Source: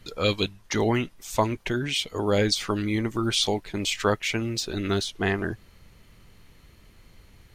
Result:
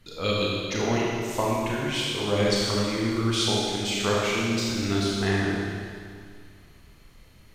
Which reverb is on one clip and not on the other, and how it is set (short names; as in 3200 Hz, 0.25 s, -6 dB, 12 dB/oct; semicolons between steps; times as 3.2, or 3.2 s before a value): Schroeder reverb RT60 2.1 s, combs from 27 ms, DRR -5 dB; gain -5.5 dB